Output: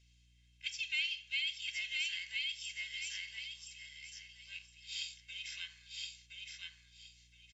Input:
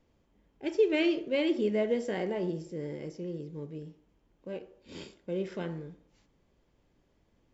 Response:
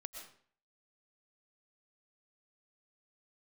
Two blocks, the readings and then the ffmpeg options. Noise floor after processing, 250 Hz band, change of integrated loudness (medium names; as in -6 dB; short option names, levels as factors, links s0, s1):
-67 dBFS, under -40 dB, -7.5 dB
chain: -filter_complex "[0:a]asuperpass=centerf=5100:order=8:qfactor=0.69,asplit=2[s0][s1];[s1]aecho=0:1:1018|2036|3054:0.631|0.133|0.0278[s2];[s0][s2]amix=inputs=2:normalize=0,aeval=exprs='val(0)+0.000112*(sin(2*PI*60*n/s)+sin(2*PI*2*60*n/s)/2+sin(2*PI*3*60*n/s)/3+sin(2*PI*4*60*n/s)/4+sin(2*PI*5*60*n/s)/5)':c=same,acompressor=threshold=0.00316:ratio=2,aecho=1:1:1.9:0.67,volume=2.99"